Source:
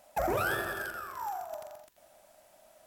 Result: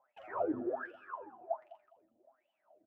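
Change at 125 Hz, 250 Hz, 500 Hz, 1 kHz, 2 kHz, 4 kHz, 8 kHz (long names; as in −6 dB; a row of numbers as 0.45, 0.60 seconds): −16.5 dB, +2.0 dB, −3.0 dB, −8.0 dB, −14.5 dB, below −20 dB, below −35 dB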